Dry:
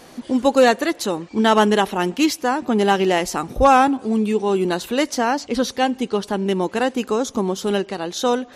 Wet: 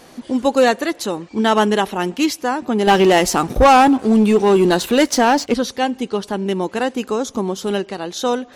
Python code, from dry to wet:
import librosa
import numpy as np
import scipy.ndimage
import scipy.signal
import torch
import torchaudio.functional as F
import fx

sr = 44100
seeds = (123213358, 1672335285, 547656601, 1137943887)

y = fx.leveller(x, sr, passes=2, at=(2.87, 5.54))